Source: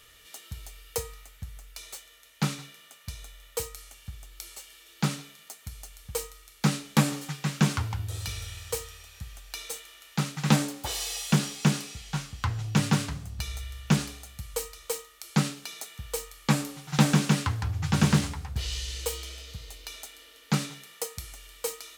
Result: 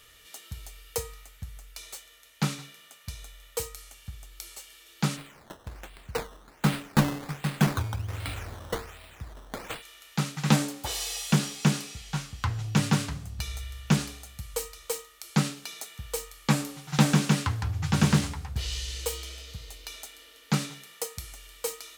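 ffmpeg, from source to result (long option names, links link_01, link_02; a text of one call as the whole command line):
ffmpeg -i in.wav -filter_complex "[0:a]asplit=3[link_01][link_02][link_03];[link_01]afade=type=out:start_time=5.16:duration=0.02[link_04];[link_02]acrusher=samples=13:mix=1:aa=0.000001:lfo=1:lforange=13:lforate=1.3,afade=type=in:start_time=5.16:duration=0.02,afade=type=out:start_time=9.81:duration=0.02[link_05];[link_03]afade=type=in:start_time=9.81:duration=0.02[link_06];[link_04][link_05][link_06]amix=inputs=3:normalize=0" out.wav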